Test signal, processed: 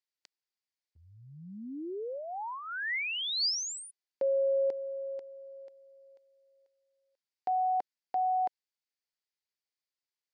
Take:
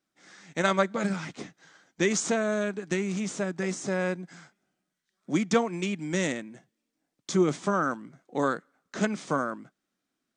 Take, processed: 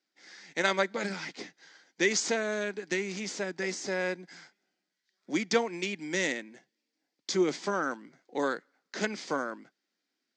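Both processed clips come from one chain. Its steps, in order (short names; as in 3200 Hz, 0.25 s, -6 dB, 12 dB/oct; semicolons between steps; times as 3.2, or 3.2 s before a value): speaker cabinet 320–7000 Hz, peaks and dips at 640 Hz -5 dB, 1200 Hz -8 dB, 2000 Hz +4 dB, 4700 Hz +8 dB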